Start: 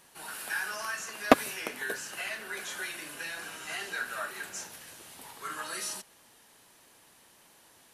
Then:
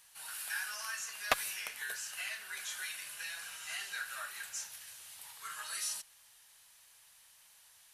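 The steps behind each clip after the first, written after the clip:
guitar amp tone stack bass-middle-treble 10-0-10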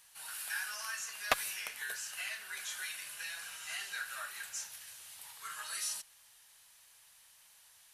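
no processing that can be heard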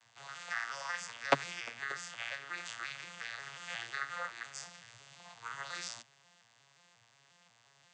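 vocoder with an arpeggio as carrier minor triad, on A#2, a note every 178 ms
level +2 dB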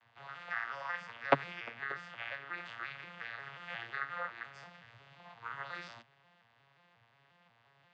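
high-frequency loss of the air 390 metres
level +3 dB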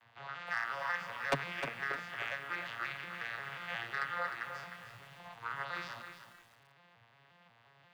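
soft clipping −28.5 dBFS, distortion −5 dB
feedback echo at a low word length 307 ms, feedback 35%, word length 10 bits, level −8 dB
level +3.5 dB

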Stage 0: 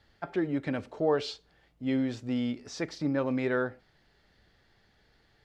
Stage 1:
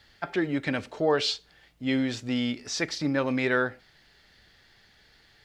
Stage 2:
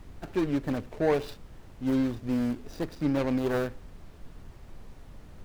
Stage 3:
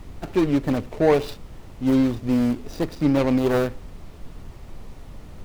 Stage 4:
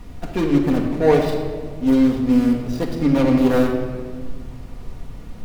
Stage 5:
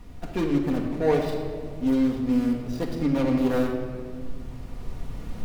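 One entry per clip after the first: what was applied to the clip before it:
drawn EQ curve 510 Hz 0 dB, 1,200 Hz +3 dB, 1,800 Hz +7 dB, 3,700 Hz +9 dB; level +2 dB
running median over 41 samples; background noise brown −45 dBFS; level +1 dB
parametric band 1,600 Hz −4.5 dB 0.25 octaves; level +7.5 dB
rectangular room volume 2,200 cubic metres, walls mixed, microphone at 1.8 metres
camcorder AGC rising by 5.2 dB per second; level −7 dB

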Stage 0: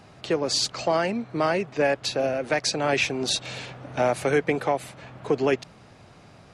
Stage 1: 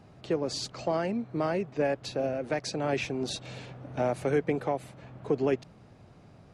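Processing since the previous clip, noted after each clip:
tilt shelving filter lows +5 dB, about 720 Hz
level −6.5 dB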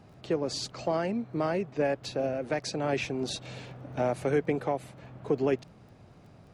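surface crackle 14 per second −51 dBFS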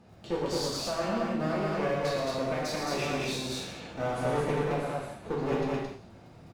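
asymmetric clip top −36.5 dBFS
loudspeakers that aren't time-aligned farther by 39 metres −6 dB, 75 metres −1 dB
reverb whose tail is shaped and stops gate 250 ms falling, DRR −3.5 dB
level −4.5 dB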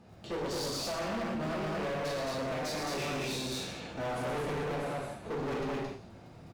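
hard clipping −32 dBFS, distortion −8 dB

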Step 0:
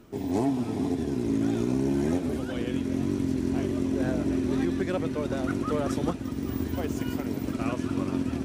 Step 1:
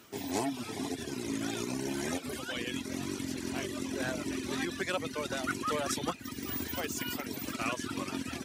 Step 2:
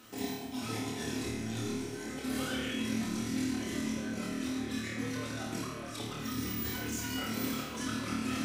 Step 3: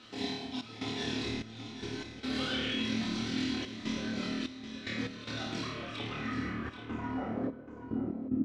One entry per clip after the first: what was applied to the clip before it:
reverb reduction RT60 0.92 s; high-pass filter 71 Hz; tilt shelving filter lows −9 dB, about 920 Hz
compressor whose output falls as the input rises −38 dBFS, ratio −0.5; flutter between parallel walls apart 4.6 metres, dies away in 0.59 s; rectangular room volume 1,900 cubic metres, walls mixed, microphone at 2 metres; level −5 dB
gate pattern "xxx.xxx..x.xxxx" 74 BPM −12 dB; low-pass filter sweep 4,000 Hz → 310 Hz, 0:05.67–0:08.16; single-tap delay 782 ms −11 dB

